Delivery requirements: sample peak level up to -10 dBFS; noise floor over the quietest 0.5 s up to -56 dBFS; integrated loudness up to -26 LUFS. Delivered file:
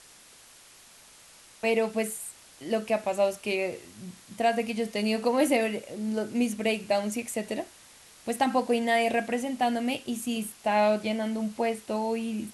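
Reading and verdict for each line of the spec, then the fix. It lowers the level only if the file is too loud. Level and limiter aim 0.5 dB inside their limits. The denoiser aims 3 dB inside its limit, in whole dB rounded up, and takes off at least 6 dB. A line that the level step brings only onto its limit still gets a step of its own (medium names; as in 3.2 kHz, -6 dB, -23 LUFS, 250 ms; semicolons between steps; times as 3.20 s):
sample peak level -12.0 dBFS: pass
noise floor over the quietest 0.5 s -53 dBFS: fail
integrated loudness -28.0 LUFS: pass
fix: noise reduction 6 dB, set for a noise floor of -53 dBFS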